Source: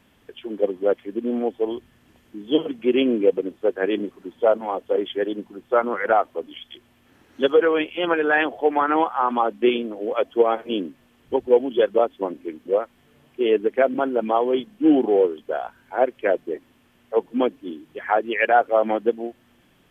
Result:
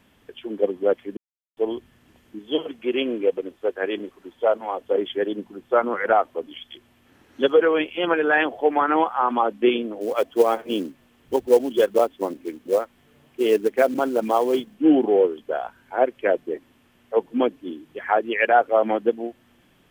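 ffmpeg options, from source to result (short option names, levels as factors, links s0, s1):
-filter_complex "[0:a]asettb=1/sr,asplit=3[s0][s1][s2];[s0]atrim=end=2.394[s3];[s1]atrim=start=2.39:end=4.8,asetpts=PTS-STARTPTS,afade=t=in:d=0.004:c=qsin,afade=t=out:st=2.406:d=0.004:c=qsin,equalizer=f=190:w=0.65:g=-8.5[s4];[s2]atrim=start=4.796[s5];[s3][s4]acrossfade=d=0.004:c1=hsin:c2=qsin[s6];[s6][s5]acrossfade=d=0.004:c1=qsin:c2=hsin,asettb=1/sr,asplit=3[s7][s8][s9];[s7]atrim=end=10.014[s10];[s8]atrim=start=10.01:end=14.75,asetpts=PTS-STARTPTS,afade=t=in:d=0.004:c=qsin,afade=t=out:st=4.736:d=0.004:c=qsin,acrusher=bits=6:mode=log:mix=0:aa=0.000001[s11];[s9]atrim=start=14.746[s12];[s10][s11]acrossfade=d=0.004:c1=hsin:c2=qsin[s13];[s13][s12]acrossfade=d=0.004:c1=qsin:c2=hsin,asplit=3[s14][s15][s16];[s14]atrim=end=1.17,asetpts=PTS-STARTPTS,afade=t=out:st=1.166:d=0.004:c=hsin[s17];[s15]atrim=start=1.17:end=1.57,asetpts=PTS-STARTPTS,volume=0[s18];[s16]atrim=start=1.57,asetpts=PTS-STARTPTS,afade=t=in:d=0.004:c=hsin[s19];[s17][s18][s19]concat=n=3:v=0:a=1"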